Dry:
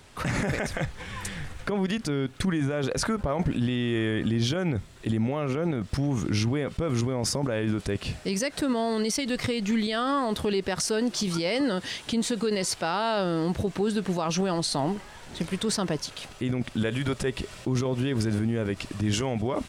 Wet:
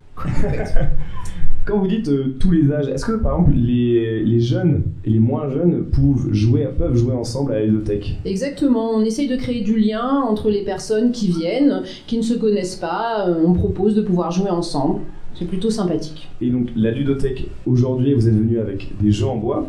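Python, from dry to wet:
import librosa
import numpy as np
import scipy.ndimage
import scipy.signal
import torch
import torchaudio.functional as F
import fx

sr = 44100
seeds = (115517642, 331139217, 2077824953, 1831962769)

p1 = fx.noise_reduce_blind(x, sr, reduce_db=9)
p2 = fx.tilt_eq(p1, sr, slope=-3.0)
p3 = fx.rider(p2, sr, range_db=3, speed_s=2.0)
p4 = p2 + F.gain(torch.from_numpy(p3), -2.0).numpy()
p5 = fx.vibrato(p4, sr, rate_hz=0.78, depth_cents=38.0)
p6 = fx.room_shoebox(p5, sr, seeds[0], volume_m3=31.0, walls='mixed', distance_m=0.37)
y = F.gain(torch.from_numpy(p6), -2.0).numpy()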